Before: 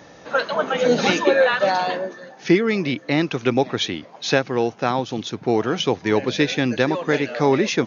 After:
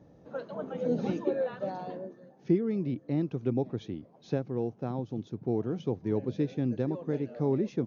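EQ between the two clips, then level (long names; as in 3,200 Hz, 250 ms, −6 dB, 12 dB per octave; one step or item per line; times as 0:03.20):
drawn EQ curve 120 Hz 0 dB, 420 Hz −7 dB, 1,900 Hz −25 dB
−4.0 dB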